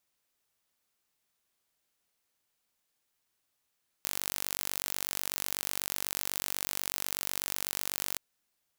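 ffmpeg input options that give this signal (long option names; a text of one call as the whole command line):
ffmpeg -f lavfi -i "aevalsrc='0.501*eq(mod(n,917),0)':duration=4.13:sample_rate=44100" out.wav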